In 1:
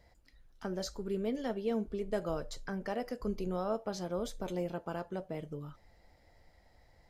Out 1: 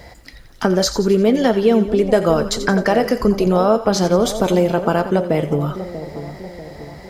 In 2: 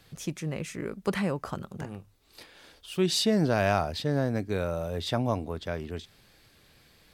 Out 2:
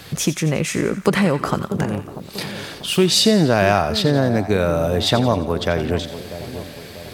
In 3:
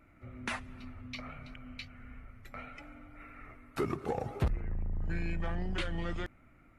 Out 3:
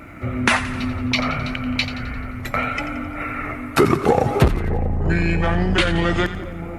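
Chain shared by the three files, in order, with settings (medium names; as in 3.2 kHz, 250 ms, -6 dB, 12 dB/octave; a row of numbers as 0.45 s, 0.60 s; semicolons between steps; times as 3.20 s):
compression 2:1, threshold -40 dBFS; high-pass 74 Hz 6 dB/octave; on a send: two-band feedback delay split 940 Hz, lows 641 ms, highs 87 ms, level -12 dB; on the sum: peak normalisation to -1.5 dBFS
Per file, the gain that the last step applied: +25.5 dB, +20.0 dB, +24.0 dB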